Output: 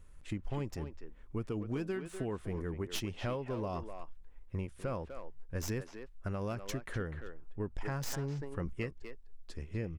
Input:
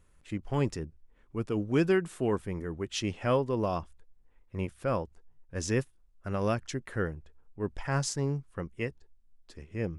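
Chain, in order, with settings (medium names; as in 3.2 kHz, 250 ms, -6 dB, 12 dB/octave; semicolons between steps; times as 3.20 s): tracing distortion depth 0.097 ms; bass shelf 65 Hz +10.5 dB; compression 12:1, threshold -34 dBFS, peak gain reduction 14.5 dB; speakerphone echo 250 ms, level -7 dB; 7.79–8.73 s: decay stretcher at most 28 dB/s; trim +1 dB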